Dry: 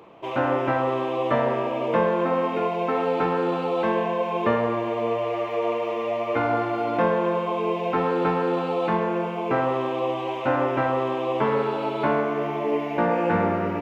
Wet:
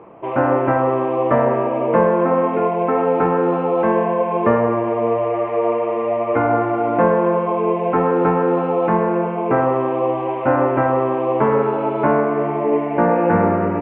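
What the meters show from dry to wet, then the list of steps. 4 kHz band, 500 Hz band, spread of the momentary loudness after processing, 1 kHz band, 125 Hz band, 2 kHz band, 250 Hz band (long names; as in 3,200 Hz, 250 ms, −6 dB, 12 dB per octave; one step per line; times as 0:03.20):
can't be measured, +6.5 dB, 4 LU, +6.0 dB, +7.0 dB, +2.5 dB, +7.0 dB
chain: Bessel low-pass filter 1,500 Hz, order 6
level +7 dB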